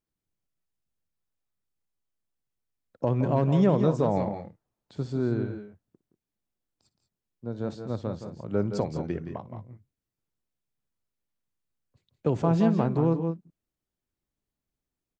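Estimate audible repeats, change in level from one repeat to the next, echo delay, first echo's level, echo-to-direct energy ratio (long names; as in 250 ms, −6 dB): 2, repeats not evenly spaced, 59 ms, −19.0 dB, −7.5 dB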